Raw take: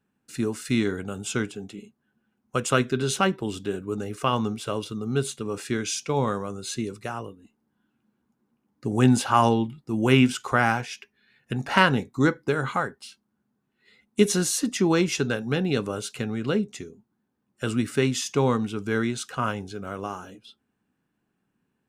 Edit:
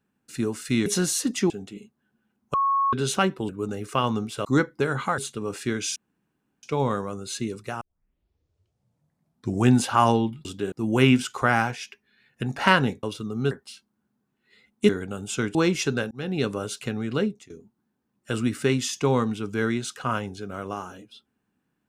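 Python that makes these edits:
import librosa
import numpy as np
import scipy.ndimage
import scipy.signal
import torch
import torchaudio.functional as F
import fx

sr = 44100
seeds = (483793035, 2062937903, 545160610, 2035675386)

y = fx.edit(x, sr, fx.swap(start_s=0.86, length_s=0.66, other_s=14.24, other_length_s=0.64),
    fx.bleep(start_s=2.56, length_s=0.39, hz=1100.0, db=-19.0),
    fx.move(start_s=3.51, length_s=0.27, to_s=9.82),
    fx.swap(start_s=4.74, length_s=0.48, other_s=12.13, other_length_s=0.73),
    fx.insert_room_tone(at_s=6.0, length_s=0.67),
    fx.tape_start(start_s=7.18, length_s=1.91),
    fx.fade_in_span(start_s=15.44, length_s=0.4, curve='qsin'),
    fx.fade_out_to(start_s=16.55, length_s=0.28, floor_db=-21.0), tone=tone)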